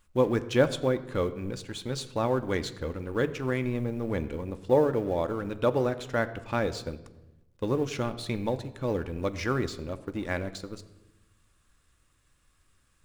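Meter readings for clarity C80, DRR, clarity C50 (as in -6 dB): 16.0 dB, 10.0 dB, 15.0 dB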